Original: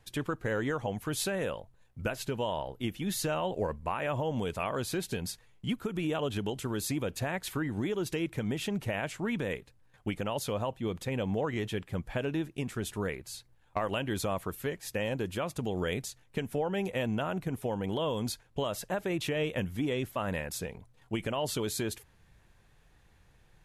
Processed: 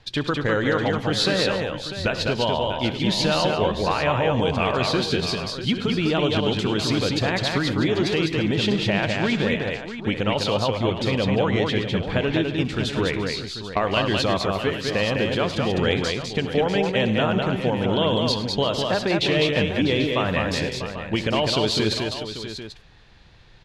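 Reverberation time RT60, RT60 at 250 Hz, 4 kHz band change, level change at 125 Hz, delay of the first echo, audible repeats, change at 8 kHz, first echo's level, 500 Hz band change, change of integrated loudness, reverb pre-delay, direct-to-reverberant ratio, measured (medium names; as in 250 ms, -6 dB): no reverb, no reverb, +16.5 dB, +10.5 dB, 68 ms, 6, +3.5 dB, -17.5 dB, +11.0 dB, +11.5 dB, no reverb, no reverb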